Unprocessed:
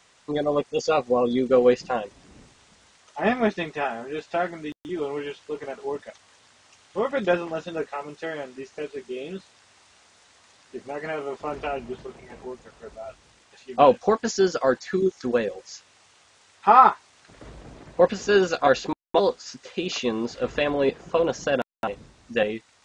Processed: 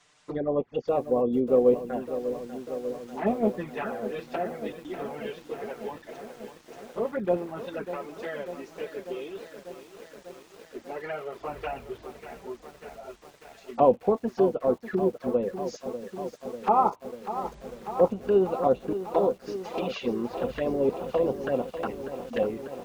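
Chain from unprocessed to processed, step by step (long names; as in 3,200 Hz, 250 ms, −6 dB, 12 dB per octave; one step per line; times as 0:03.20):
treble cut that deepens with the level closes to 1,100 Hz, closed at −21 dBFS
flanger swept by the level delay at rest 7 ms, full sweep at −20 dBFS
feedback echo at a low word length 594 ms, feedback 80%, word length 8 bits, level −11 dB
level −1.5 dB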